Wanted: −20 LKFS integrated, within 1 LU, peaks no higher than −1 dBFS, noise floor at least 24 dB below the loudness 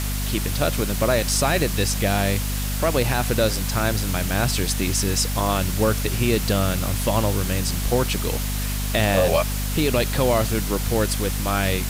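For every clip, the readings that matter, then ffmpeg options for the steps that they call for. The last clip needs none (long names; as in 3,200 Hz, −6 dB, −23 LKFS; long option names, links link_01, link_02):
mains hum 50 Hz; hum harmonics up to 250 Hz; level of the hum −23 dBFS; background noise floor −25 dBFS; target noise floor −46 dBFS; integrated loudness −22.0 LKFS; sample peak −7.0 dBFS; target loudness −20.0 LKFS
→ -af "bandreject=frequency=50:width_type=h:width=4,bandreject=frequency=100:width_type=h:width=4,bandreject=frequency=150:width_type=h:width=4,bandreject=frequency=200:width_type=h:width=4,bandreject=frequency=250:width_type=h:width=4"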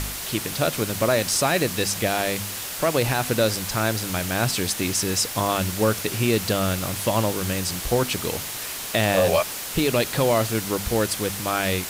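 mains hum none found; background noise floor −32 dBFS; target noise floor −47 dBFS
→ -af "afftdn=noise_reduction=15:noise_floor=-32"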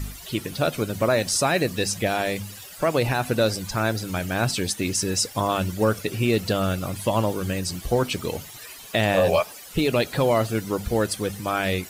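background noise floor −42 dBFS; target noise floor −48 dBFS
→ -af "afftdn=noise_reduction=6:noise_floor=-42"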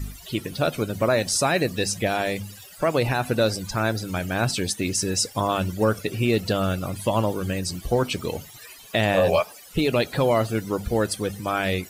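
background noise floor −45 dBFS; target noise floor −48 dBFS
→ -af "afftdn=noise_reduction=6:noise_floor=-45"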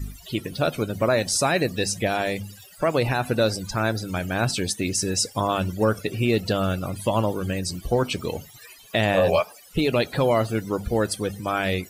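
background noise floor −48 dBFS; integrated loudness −24.0 LKFS; sample peak −9.5 dBFS; target loudness −20.0 LKFS
→ -af "volume=4dB"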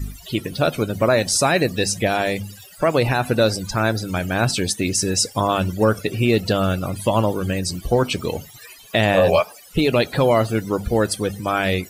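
integrated loudness −20.0 LKFS; sample peak −5.5 dBFS; background noise floor −44 dBFS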